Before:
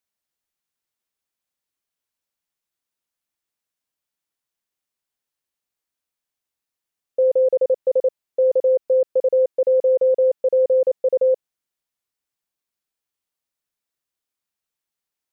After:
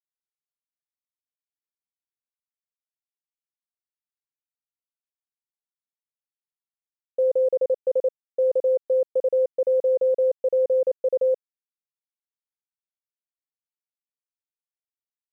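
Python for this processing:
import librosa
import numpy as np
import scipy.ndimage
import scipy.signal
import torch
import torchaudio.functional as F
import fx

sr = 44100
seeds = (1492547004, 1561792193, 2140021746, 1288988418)

y = fx.quant_dither(x, sr, seeds[0], bits=10, dither='none')
y = y * librosa.db_to_amplitude(-4.0)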